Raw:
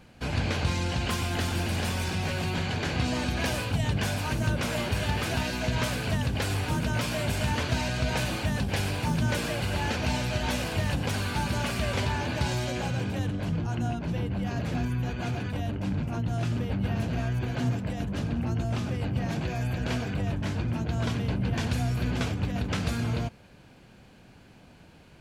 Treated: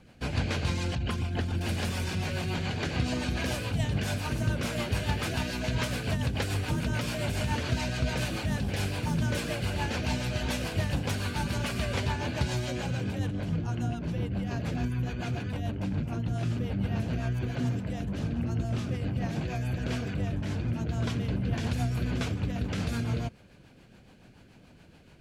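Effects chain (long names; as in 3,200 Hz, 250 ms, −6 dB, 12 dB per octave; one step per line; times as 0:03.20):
0:00.95–0:01.61: spectral envelope exaggerated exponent 1.5
rotating-speaker cabinet horn 7 Hz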